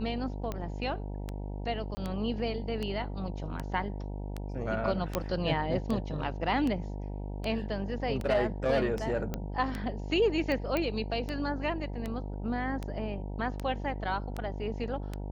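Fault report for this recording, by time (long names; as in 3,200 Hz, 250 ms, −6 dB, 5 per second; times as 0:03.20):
mains buzz 50 Hz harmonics 19 −37 dBFS
scratch tick 78 rpm −21 dBFS
0:01.95–0:01.97: drop-out 20 ms
0:05.15: click −13 dBFS
0:09.34: click −19 dBFS
0:10.77: click −16 dBFS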